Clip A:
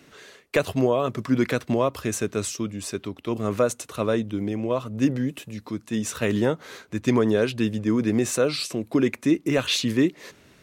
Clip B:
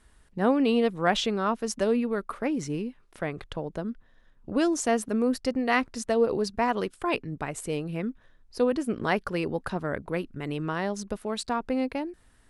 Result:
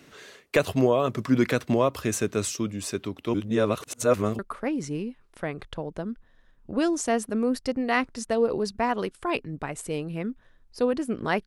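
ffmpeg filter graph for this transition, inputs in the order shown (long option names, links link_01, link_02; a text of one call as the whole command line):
ffmpeg -i cue0.wav -i cue1.wav -filter_complex "[0:a]apad=whole_dur=11.46,atrim=end=11.46,asplit=2[link_01][link_02];[link_01]atrim=end=3.342[link_03];[link_02]atrim=start=3.338:end=4.392,asetpts=PTS-STARTPTS,areverse[link_04];[1:a]atrim=start=2.178:end=9.25[link_05];[link_03][link_04]acrossfade=duration=0.004:curve1=hsin:curve2=hsin[link_06];[link_06][link_05]acrossfade=duration=0.004:curve1=hsin:curve2=hsin" out.wav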